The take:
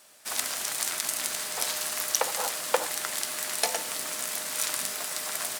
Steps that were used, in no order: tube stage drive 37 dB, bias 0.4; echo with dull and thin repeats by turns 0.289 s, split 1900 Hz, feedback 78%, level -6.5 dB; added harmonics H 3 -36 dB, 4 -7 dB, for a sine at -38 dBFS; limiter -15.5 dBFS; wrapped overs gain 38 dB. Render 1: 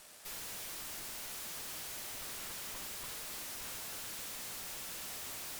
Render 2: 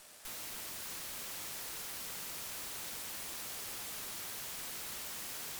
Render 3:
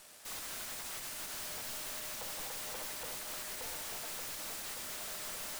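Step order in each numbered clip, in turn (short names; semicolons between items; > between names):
echo with dull and thin repeats by turns > limiter > added harmonics > wrapped overs > tube stage; limiter > wrapped overs > tube stage > added harmonics > echo with dull and thin repeats by turns; echo with dull and thin repeats by turns > limiter > tube stage > added harmonics > wrapped overs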